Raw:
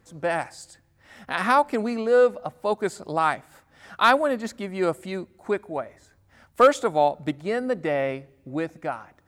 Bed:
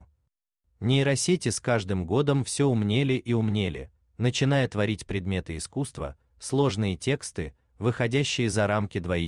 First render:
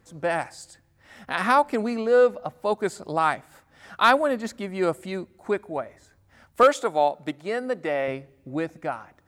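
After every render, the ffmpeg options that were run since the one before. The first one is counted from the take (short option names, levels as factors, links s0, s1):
-filter_complex "[0:a]asettb=1/sr,asplit=3[s0][s1][s2];[s0]atrim=end=2.064[s3];[s1]atrim=start=2.06:end=2.62,asetpts=PTS-STARTPTS,afade=t=in:d=0.004:c=qsin,afade=t=out:st=0.556:d=0.004:c=qsin,equalizer=f=8800:t=o:w=0.24:g=-7[s4];[s2]atrim=start=2.616[s5];[s3][s4]acrossfade=d=0.004:c1=hsin:c2=qsin[s6];[s6][s5]acrossfade=d=0.004:c1=qsin:c2=hsin,asettb=1/sr,asplit=3[s7][s8][s9];[s7]atrim=end=6.634[s10];[s8]atrim=start=6.63:end=8.08,asetpts=PTS-STARTPTS,afade=t=in:d=0.004:c=qsin,afade=t=out:st=1.446:d=0.004:c=qsin,highpass=f=330:p=1[s11];[s9]atrim=start=8.076[s12];[s10][s11]acrossfade=d=0.004:c1=hsin:c2=qsin[s13];[s13][s12]acrossfade=d=0.004:c1=qsin:c2=hsin"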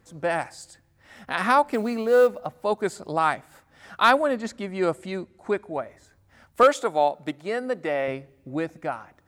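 -filter_complex "[0:a]asettb=1/sr,asplit=3[s0][s1][s2];[s0]atrim=end=1.724[s3];[s1]atrim=start=1.72:end=2.46,asetpts=PTS-STARTPTS,afade=t=in:d=0.004:c=qsin,afade=t=out:st=0.736:d=0.004:c=qsin,acrusher=bits=8:mode=log:mix=0:aa=0.000001[s4];[s2]atrim=start=2.456[s5];[s3][s4]acrossfade=d=0.004:c1=hsin:c2=qsin[s6];[s6][s5]acrossfade=d=0.004:c1=qsin:c2=hsin,asettb=1/sr,asplit=3[s7][s8][s9];[s7]atrim=end=4.224[s10];[s8]atrim=start=4.22:end=5.81,asetpts=PTS-STARTPTS,afade=t=in:d=0.004:c=qsin,afade=t=out:st=1.586:d=0.004:c=qsin,lowpass=9800[s11];[s9]atrim=start=5.806[s12];[s10][s11]acrossfade=d=0.004:c1=hsin:c2=qsin[s13];[s13][s12]acrossfade=d=0.004:c1=qsin:c2=hsin"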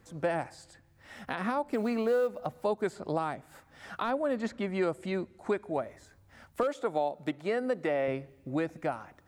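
-filter_complex "[0:a]alimiter=limit=0.211:level=0:latency=1:release=327,acrossover=split=620|3400[s0][s1][s2];[s0]acompressor=threshold=0.0398:ratio=4[s3];[s1]acompressor=threshold=0.0158:ratio=4[s4];[s2]acompressor=threshold=0.00158:ratio=4[s5];[s3][s4][s5]amix=inputs=3:normalize=0"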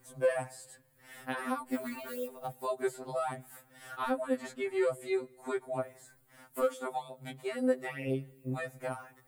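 -af "aexciter=amount=3.5:drive=7.4:freq=8000,afftfilt=real='re*2.45*eq(mod(b,6),0)':imag='im*2.45*eq(mod(b,6),0)':win_size=2048:overlap=0.75"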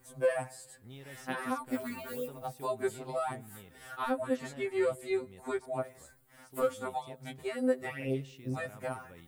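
-filter_complex "[1:a]volume=0.0447[s0];[0:a][s0]amix=inputs=2:normalize=0"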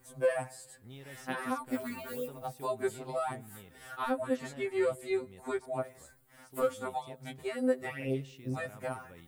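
-af anull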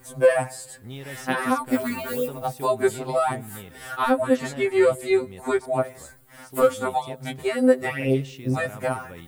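-af "volume=3.76"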